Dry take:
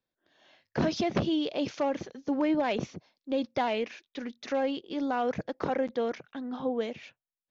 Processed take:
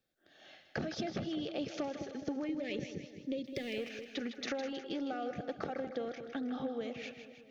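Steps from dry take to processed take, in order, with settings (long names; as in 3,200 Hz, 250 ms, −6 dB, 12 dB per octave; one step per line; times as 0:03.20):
0:03.45–0:03.89: mu-law and A-law mismatch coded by mu
0:02.47–0:03.77: gain on a spectral selection 590–1,700 Hz −19 dB
downward compressor 12 to 1, threshold −39 dBFS, peak gain reduction 16 dB
Butterworth band-reject 990 Hz, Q 4
echo with a time of its own for lows and highs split 630 Hz, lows 208 ms, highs 158 ms, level −9 dB
level +4 dB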